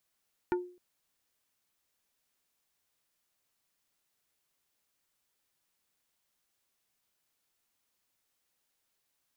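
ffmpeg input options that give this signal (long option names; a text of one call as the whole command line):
ffmpeg -f lavfi -i "aevalsrc='0.0631*pow(10,-3*t/0.42)*sin(2*PI*358*t)+0.0355*pow(10,-3*t/0.14)*sin(2*PI*895*t)+0.02*pow(10,-3*t/0.08)*sin(2*PI*1432*t)+0.0112*pow(10,-3*t/0.061)*sin(2*PI*1790*t)+0.00631*pow(10,-3*t/0.044)*sin(2*PI*2327*t)':duration=0.26:sample_rate=44100" out.wav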